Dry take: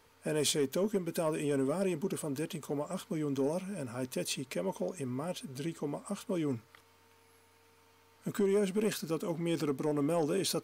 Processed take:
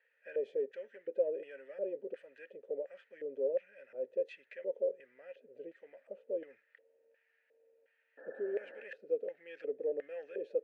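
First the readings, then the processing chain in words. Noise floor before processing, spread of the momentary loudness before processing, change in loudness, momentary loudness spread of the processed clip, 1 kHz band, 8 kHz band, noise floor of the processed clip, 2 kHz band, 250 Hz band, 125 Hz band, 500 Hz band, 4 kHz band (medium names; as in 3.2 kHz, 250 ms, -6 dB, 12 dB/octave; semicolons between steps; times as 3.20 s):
-64 dBFS, 9 LU, -5.0 dB, 16 LU, under -20 dB, under -40 dB, -76 dBFS, -7.5 dB, -19.5 dB, under -35 dB, -2.5 dB, under -25 dB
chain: LFO band-pass square 1.4 Hz 470–1700 Hz; painted sound noise, 8.17–8.83 s, 210–1800 Hz -50 dBFS; vowel filter e; trim +8.5 dB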